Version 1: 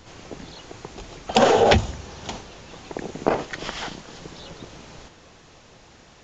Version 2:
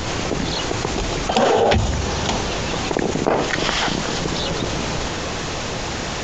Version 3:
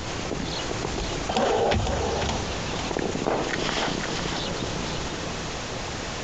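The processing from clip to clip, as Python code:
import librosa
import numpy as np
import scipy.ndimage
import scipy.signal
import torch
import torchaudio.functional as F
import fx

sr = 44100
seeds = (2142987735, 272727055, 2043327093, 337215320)

y1 = fx.env_flatten(x, sr, amount_pct=70)
y1 = y1 * librosa.db_to_amplitude(-1.5)
y2 = y1 + 10.0 ** (-6.5 / 20.0) * np.pad(y1, (int(502 * sr / 1000.0), 0))[:len(y1)]
y2 = y2 * librosa.db_to_amplitude(-7.0)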